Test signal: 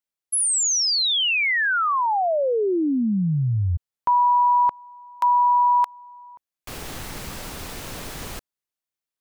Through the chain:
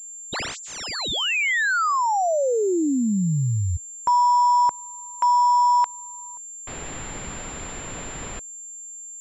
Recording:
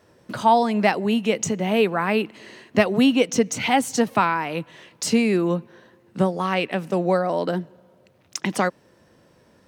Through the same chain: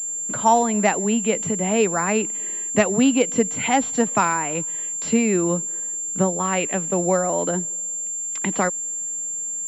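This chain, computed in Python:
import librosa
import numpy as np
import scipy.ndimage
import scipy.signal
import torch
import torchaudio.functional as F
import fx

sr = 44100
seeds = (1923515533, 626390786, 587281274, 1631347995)

y = fx.peak_eq(x, sr, hz=88.0, db=-2.0, octaves=0.68)
y = fx.pwm(y, sr, carrier_hz=7300.0)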